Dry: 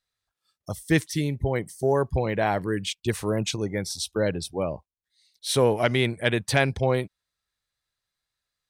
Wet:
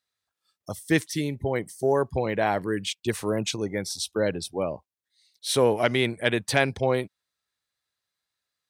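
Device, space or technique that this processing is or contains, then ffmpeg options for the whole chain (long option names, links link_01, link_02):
low shelf boost with a cut just above: -af "highpass=140,lowshelf=frequency=83:gain=7.5,equalizer=frequency=150:width_type=o:width=0.75:gain=-4"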